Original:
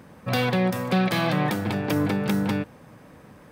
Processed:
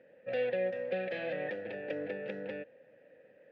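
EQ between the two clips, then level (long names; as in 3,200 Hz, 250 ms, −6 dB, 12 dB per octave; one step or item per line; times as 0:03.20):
formant filter e
low-pass filter 3,600 Hz 12 dB per octave
0.0 dB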